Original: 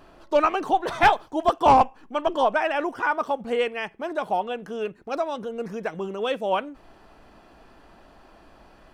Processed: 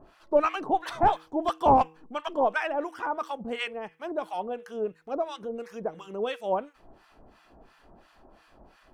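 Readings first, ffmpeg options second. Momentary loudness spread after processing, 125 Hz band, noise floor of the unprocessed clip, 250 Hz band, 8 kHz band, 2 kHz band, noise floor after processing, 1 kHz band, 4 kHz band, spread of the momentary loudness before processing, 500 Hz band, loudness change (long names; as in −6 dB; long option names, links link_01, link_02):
12 LU, −2.0 dB, −53 dBFS, −3.0 dB, can't be measured, −7.5 dB, −61 dBFS, −4.5 dB, −6.0 dB, 12 LU, −4.0 dB, −4.5 dB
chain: -filter_complex "[0:a]acrossover=split=990[link_01][link_02];[link_01]aeval=exprs='val(0)*(1-1/2+1/2*cos(2*PI*2.9*n/s))':channel_layout=same[link_03];[link_02]aeval=exprs='val(0)*(1-1/2-1/2*cos(2*PI*2.9*n/s))':channel_layout=same[link_04];[link_03][link_04]amix=inputs=2:normalize=0,bandreject=frequency=159.8:width_type=h:width=4,bandreject=frequency=319.6:width_type=h:width=4,bandreject=frequency=479.4:width_type=h:width=4"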